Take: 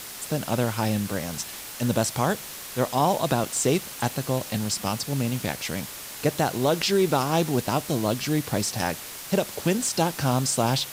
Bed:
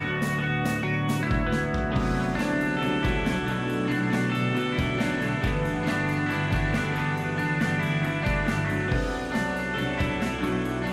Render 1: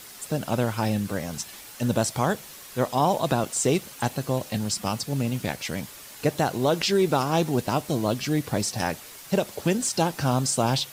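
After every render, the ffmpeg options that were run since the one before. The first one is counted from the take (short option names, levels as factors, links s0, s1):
-af "afftdn=nr=7:nf=-39"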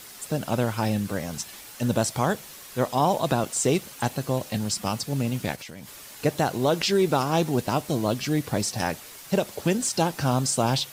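-filter_complex "[0:a]asplit=3[s0][s1][s2];[s0]afade=t=out:st=5.55:d=0.02[s3];[s1]acompressor=threshold=0.0158:ratio=10:attack=3.2:release=140:knee=1:detection=peak,afade=t=in:st=5.55:d=0.02,afade=t=out:st=6.05:d=0.02[s4];[s2]afade=t=in:st=6.05:d=0.02[s5];[s3][s4][s5]amix=inputs=3:normalize=0"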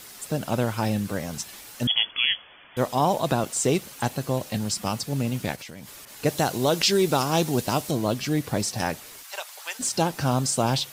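-filter_complex "[0:a]asettb=1/sr,asplit=3[s0][s1][s2];[s0]atrim=end=1.874[s3];[s1]atrim=start=1.87:end=2.77,asetpts=PTS-STARTPTS,afade=t=in:d=0.004:c=qsin,afade=t=out:st=0.896:d=0.004:c=qsin,lowpass=f=3000:t=q:w=0.5098,lowpass=f=3000:t=q:w=0.6013,lowpass=f=3000:t=q:w=0.9,lowpass=f=3000:t=q:w=2.563,afreqshift=-3500[s4];[s2]atrim=start=2.766[s5];[s3][s4]acrossfade=d=0.004:c1=hsin:c2=qsin[s6];[s6][s5]acrossfade=d=0.004:c1=qsin:c2=hsin,asettb=1/sr,asplit=3[s7][s8][s9];[s7]atrim=end=6.054[s10];[s8]atrim=start=6.05:end=7.91,asetpts=PTS-STARTPTS,afade=t=in:d=0.004:c=qsin,afade=t=out:st=1.856:d=0.004:c=qsin,adynamicequalizer=threshold=0.01:dfrequency=3000:dqfactor=0.7:tfrequency=3000:tqfactor=0.7:attack=5:release=100:ratio=0.375:range=3:mode=boostabove:tftype=highshelf[s11];[s9]atrim=start=7.906[s12];[s10][s11]acrossfade=d=0.004:c1=hsin:c2=qsin[s13];[s13][s12]acrossfade=d=0.004:c1=qsin:c2=hsin,asplit=3[s14][s15][s16];[s14]afade=t=out:st=9.22:d=0.02[s17];[s15]highpass=f=880:w=0.5412,highpass=f=880:w=1.3066,afade=t=in:st=9.22:d=0.02,afade=t=out:st=9.79:d=0.02[s18];[s16]afade=t=in:st=9.79:d=0.02[s19];[s17][s18][s19]amix=inputs=3:normalize=0"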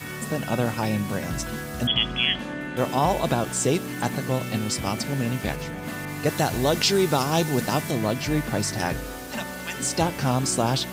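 -filter_complex "[1:a]volume=0.447[s0];[0:a][s0]amix=inputs=2:normalize=0"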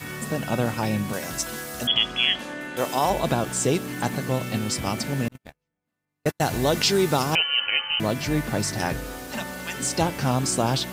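-filter_complex "[0:a]asettb=1/sr,asplit=3[s0][s1][s2];[s0]atrim=end=1.134[s3];[s1]atrim=start=1.13:end=3.1,asetpts=PTS-STARTPTS,afade=t=in:d=0.004:c=qsin,afade=t=out:st=1.966:d=0.004:c=qsin,bass=f=250:g=-10,treble=f=4000:g=6[s4];[s2]atrim=start=3.096[s5];[s3][s4]acrossfade=d=0.004:c1=hsin:c2=qsin[s6];[s6][s5]acrossfade=d=0.004:c1=qsin:c2=hsin,asettb=1/sr,asplit=3[s7][s8][s9];[s7]atrim=end=5.284[s10];[s8]atrim=start=5.28:end=6.41,asetpts=PTS-STARTPTS,afade=t=in:d=0.004:c=qsin,afade=t=out:st=1.126:d=0.004:c=qsin,agate=range=0.00316:threshold=0.0708:ratio=16:release=100:detection=peak[s11];[s9]atrim=start=6.406[s12];[s10][s11]acrossfade=d=0.004:c1=hsin:c2=qsin[s13];[s13][s12]acrossfade=d=0.004:c1=qsin:c2=hsin,asettb=1/sr,asplit=3[s14][s15][s16];[s14]atrim=end=7.354[s17];[s15]atrim=start=7.35:end=8,asetpts=PTS-STARTPTS,afade=t=in:d=0.004:c=qsin,afade=t=out:st=0.646:d=0.004:c=qsin,lowpass=f=2700:t=q:w=0.5098,lowpass=f=2700:t=q:w=0.6013,lowpass=f=2700:t=q:w=0.9,lowpass=f=2700:t=q:w=2.563,afreqshift=-3200[s18];[s16]atrim=start=7.996[s19];[s17][s18]acrossfade=d=0.004:c1=hsin:c2=qsin[s20];[s20][s19]acrossfade=d=0.004:c1=qsin:c2=hsin"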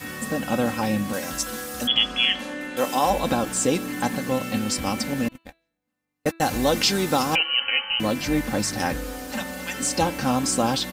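-af "aecho=1:1:3.8:0.58,bandreject=f=330.1:t=h:w=4,bandreject=f=660.2:t=h:w=4,bandreject=f=990.3:t=h:w=4,bandreject=f=1320.4:t=h:w=4,bandreject=f=1650.5:t=h:w=4,bandreject=f=1980.6:t=h:w=4,bandreject=f=2310.7:t=h:w=4,bandreject=f=2640.8:t=h:w=4,bandreject=f=2970.9:t=h:w=4,bandreject=f=3301:t=h:w=4,bandreject=f=3631.1:t=h:w=4,bandreject=f=3961.2:t=h:w=4,bandreject=f=4291.3:t=h:w=4,bandreject=f=4621.4:t=h:w=4"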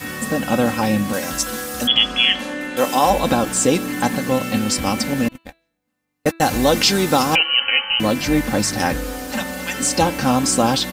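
-af "volume=1.88,alimiter=limit=0.708:level=0:latency=1"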